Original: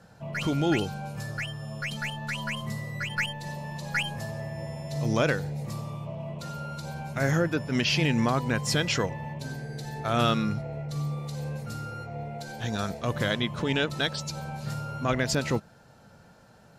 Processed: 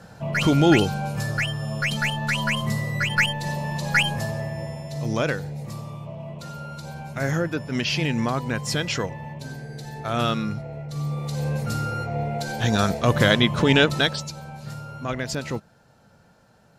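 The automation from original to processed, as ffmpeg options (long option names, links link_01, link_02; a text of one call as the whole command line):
ffmpeg -i in.wav -af "volume=17.5dB,afade=type=out:start_time=4.08:duration=0.87:silence=0.398107,afade=type=in:start_time=10.91:duration=0.74:silence=0.354813,afade=type=out:start_time=13.84:duration=0.51:silence=0.266073" out.wav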